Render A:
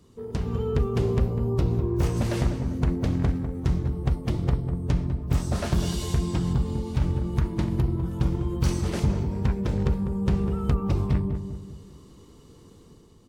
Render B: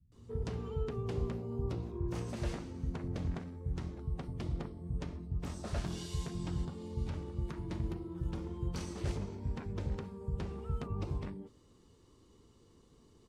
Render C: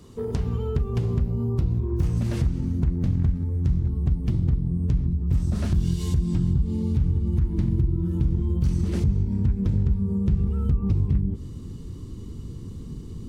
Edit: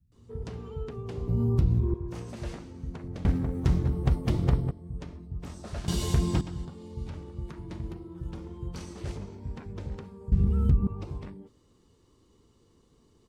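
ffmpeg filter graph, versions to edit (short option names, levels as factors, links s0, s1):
-filter_complex "[2:a]asplit=2[s0][s1];[0:a]asplit=2[s2][s3];[1:a]asplit=5[s4][s5][s6][s7][s8];[s4]atrim=end=1.282[s9];[s0]atrim=start=1.278:end=1.942[s10];[s5]atrim=start=1.938:end=3.252[s11];[s2]atrim=start=3.248:end=4.712[s12];[s6]atrim=start=4.708:end=5.882[s13];[s3]atrim=start=5.878:end=6.412[s14];[s7]atrim=start=6.408:end=10.322[s15];[s1]atrim=start=10.318:end=10.872[s16];[s8]atrim=start=10.868[s17];[s9][s10]acrossfade=d=0.004:c1=hsin:c2=hsin[s18];[s18][s11]acrossfade=d=0.004:c1=hsin:c2=hsin[s19];[s19][s12]acrossfade=d=0.004:c1=hsin:c2=hsin[s20];[s20][s13]acrossfade=d=0.004:c1=hsin:c2=hsin[s21];[s21][s14]acrossfade=d=0.004:c1=hsin:c2=hsin[s22];[s22][s15]acrossfade=d=0.004:c1=hsin:c2=hsin[s23];[s23][s16]acrossfade=d=0.004:c1=hsin:c2=hsin[s24];[s24][s17]acrossfade=d=0.004:c1=hsin:c2=hsin"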